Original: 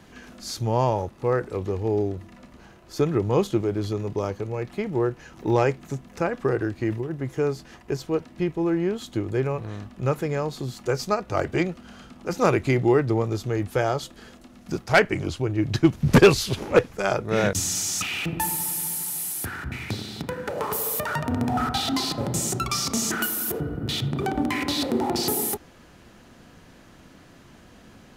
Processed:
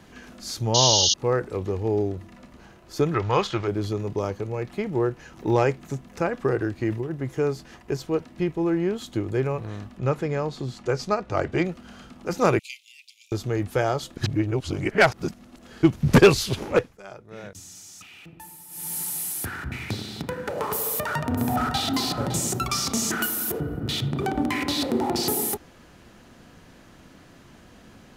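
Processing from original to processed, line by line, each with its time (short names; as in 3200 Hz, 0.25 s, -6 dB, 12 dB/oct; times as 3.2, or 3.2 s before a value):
0.74–1.14 painted sound noise 2800–6800 Hz -20 dBFS
3.14–3.68 EQ curve 100 Hz 0 dB, 260 Hz -9 dB, 1400 Hz +11 dB, 5200 Hz +6 dB, 7800 Hz -3 dB, 11000 Hz -12 dB
9.98–11.65 air absorption 56 m
12.59–13.32 steep high-pass 2400 Hz 96 dB/oct
14.17–15.83 reverse
16.67–18.99 dip -18 dB, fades 0.30 s
20.81–21.8 echo throw 0.56 s, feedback 45%, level -11 dB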